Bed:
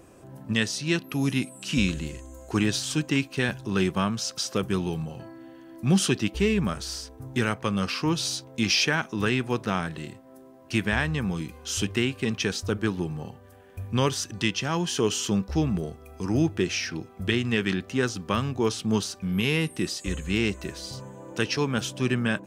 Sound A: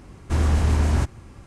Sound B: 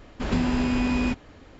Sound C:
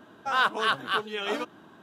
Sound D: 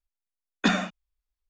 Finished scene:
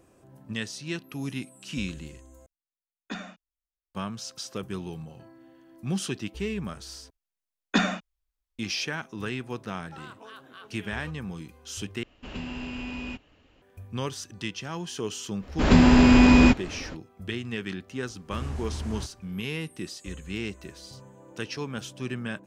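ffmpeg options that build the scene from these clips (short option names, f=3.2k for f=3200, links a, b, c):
-filter_complex "[4:a]asplit=2[a][b];[2:a]asplit=2[c][d];[0:a]volume=-8dB[e];[3:a]acompressor=threshold=-28dB:ratio=6:attack=3.2:release=140:knee=1:detection=peak[f];[c]equalizer=f=2.8k:t=o:w=0.29:g=14[g];[d]dynaudnorm=f=140:g=3:m=11.5dB[h];[e]asplit=4[i][j][k][l];[i]atrim=end=2.464[m];[a]atrim=end=1.49,asetpts=PTS-STARTPTS,volume=-14dB[n];[j]atrim=start=3.946:end=7.104[o];[b]atrim=end=1.49,asetpts=PTS-STARTPTS,volume=-0.5dB[p];[k]atrim=start=8.586:end=12.034[q];[g]atrim=end=1.59,asetpts=PTS-STARTPTS,volume=-12.5dB[r];[l]atrim=start=13.616[s];[f]atrim=end=1.82,asetpts=PTS-STARTPTS,volume=-13.5dB,afade=t=in:d=0.004:c=hsin,afade=t=out:st=1.816:d=0.004:c=hsin,adelay=9660[t];[h]atrim=end=1.59,asetpts=PTS-STARTPTS,volume=-1.5dB,afade=t=in:d=0.05,afade=t=out:st=1.54:d=0.05,adelay=15390[u];[1:a]atrim=end=1.46,asetpts=PTS-STARTPTS,volume=-14.5dB,afade=t=in:d=0.004:c=hsin,afade=t=out:st=1.456:d=0.004:c=hsin,adelay=18010[v];[m][n]acrossfade=d=0.004:c1=hsin:c2=hsin[w];[w][o]acrossfade=d=0.004:c1=hsin:c2=hsin[x];[x][p]acrossfade=d=0.004:c1=hsin:c2=hsin[y];[y][q]acrossfade=d=0.004:c1=hsin:c2=hsin[z];[z][r]acrossfade=d=0.004:c1=hsin:c2=hsin[aa];[aa][s]acrossfade=d=0.004:c1=hsin:c2=hsin[ab];[ab][t][u][v]amix=inputs=4:normalize=0"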